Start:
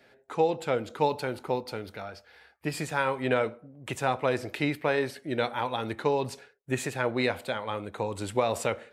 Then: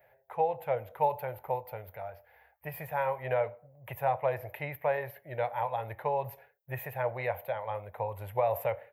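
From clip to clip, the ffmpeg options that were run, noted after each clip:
-af "firequalizer=gain_entry='entry(120,0);entry(260,-25);entry(560,3);entry(910,2);entry(1300,-10);entry(1900,-2);entry(4200,-23);entry(8300,-25);entry(13000,14)':delay=0.05:min_phase=1,volume=0.794"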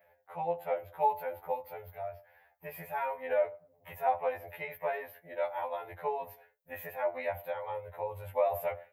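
-af "afftfilt=real='re*2*eq(mod(b,4),0)':imag='im*2*eq(mod(b,4),0)':win_size=2048:overlap=0.75"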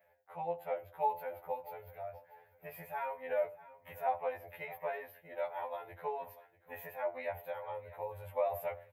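-af "aecho=1:1:641|1282|1923:0.126|0.0403|0.0129,volume=0.596"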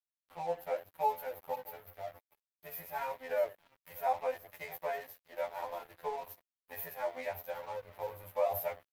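-filter_complex "[0:a]acrossover=split=370|540|3100[s0][s1][s2][s3];[s3]aexciter=amount=2.6:drive=2.2:freq=4400[s4];[s0][s1][s2][s4]amix=inputs=4:normalize=0,flanger=delay=7.1:depth=8.8:regen=67:speed=0.91:shape=sinusoidal,aeval=exprs='sgn(val(0))*max(abs(val(0))-0.00158,0)':c=same,volume=2.11"

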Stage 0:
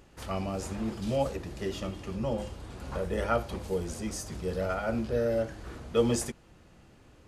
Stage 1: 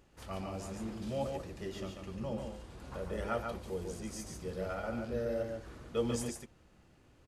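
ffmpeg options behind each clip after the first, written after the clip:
-af "aecho=1:1:142:0.596,volume=0.398"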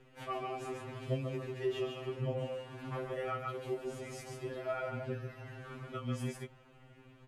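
-af "acompressor=threshold=0.0141:ratio=10,highshelf=f=3700:t=q:w=1.5:g=-8,afftfilt=real='re*2.45*eq(mod(b,6),0)':imag='im*2.45*eq(mod(b,6),0)':win_size=2048:overlap=0.75,volume=2.24"

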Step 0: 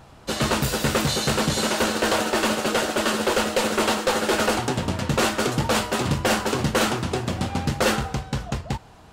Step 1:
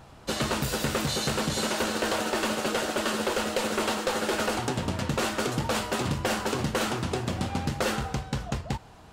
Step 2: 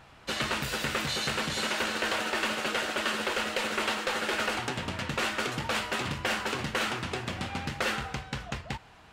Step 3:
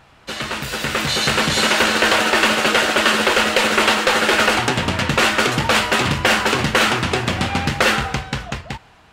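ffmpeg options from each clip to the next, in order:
-af "acompressor=threshold=0.0794:ratio=6,volume=0.794"
-af "equalizer=f=2200:w=0.66:g=10.5,volume=0.447"
-af "dynaudnorm=f=160:g=13:m=3.35,volume=1.58"

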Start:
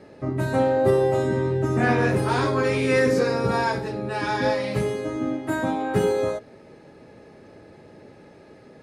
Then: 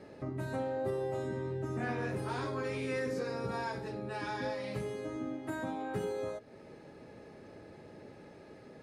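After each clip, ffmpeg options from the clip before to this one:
-af "acompressor=threshold=0.0141:ratio=2,volume=0.596"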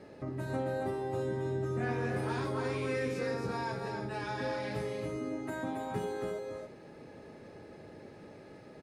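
-af "aecho=1:1:275|349:0.596|0.15"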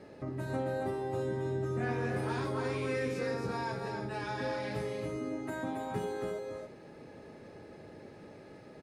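-af anull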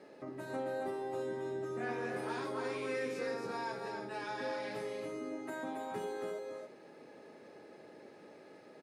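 -af "highpass=270,volume=0.75"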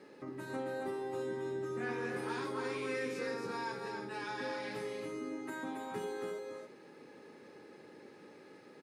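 -af "equalizer=f=650:t=o:w=0.37:g=-11.5,volume=1.19"

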